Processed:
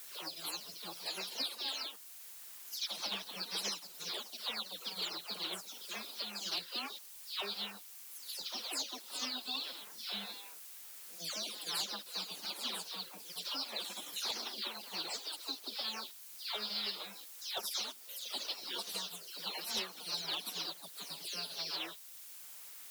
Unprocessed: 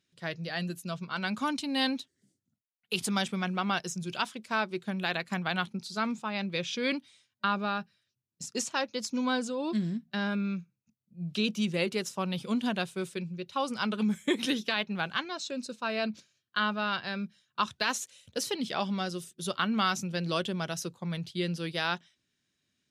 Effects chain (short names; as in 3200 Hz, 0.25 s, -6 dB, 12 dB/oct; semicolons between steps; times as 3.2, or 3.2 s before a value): spectral delay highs early, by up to 0.307 s; HPF 450 Hz 24 dB/oct; spectral gate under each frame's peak -20 dB weak; graphic EQ 2000/4000/8000 Hz -10/+9/-8 dB; added noise blue -65 dBFS; sine folder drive 7 dB, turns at -28 dBFS; three-band squash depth 40%; gain -1 dB